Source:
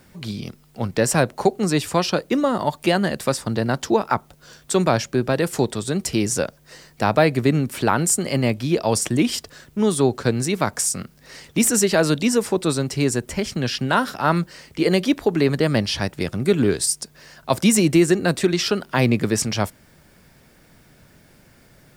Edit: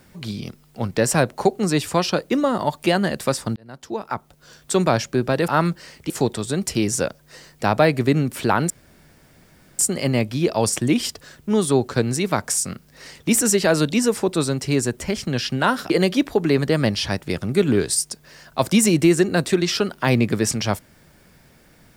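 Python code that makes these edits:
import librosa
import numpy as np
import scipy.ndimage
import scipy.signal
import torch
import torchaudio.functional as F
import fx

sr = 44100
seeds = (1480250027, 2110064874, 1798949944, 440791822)

y = fx.edit(x, sr, fx.fade_in_span(start_s=3.56, length_s=1.17),
    fx.insert_room_tone(at_s=8.08, length_s=1.09),
    fx.move(start_s=14.19, length_s=0.62, to_s=5.48), tone=tone)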